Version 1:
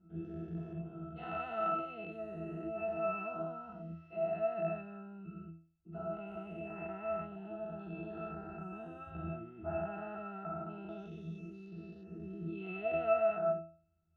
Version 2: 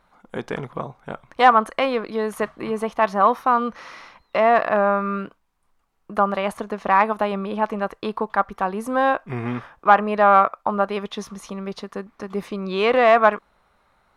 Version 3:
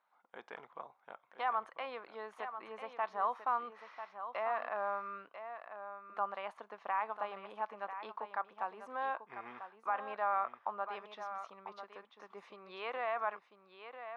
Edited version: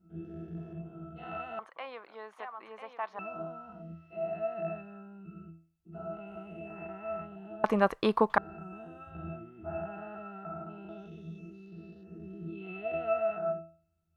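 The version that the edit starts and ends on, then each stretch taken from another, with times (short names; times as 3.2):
1
1.59–3.19 from 3
7.64–8.38 from 2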